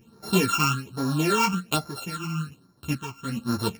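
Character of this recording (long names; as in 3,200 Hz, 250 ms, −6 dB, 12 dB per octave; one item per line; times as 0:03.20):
a buzz of ramps at a fixed pitch in blocks of 32 samples
phaser sweep stages 8, 1.2 Hz, lowest notch 500–2,800 Hz
tremolo triangle 0.87 Hz, depth 70%
a shimmering, thickened sound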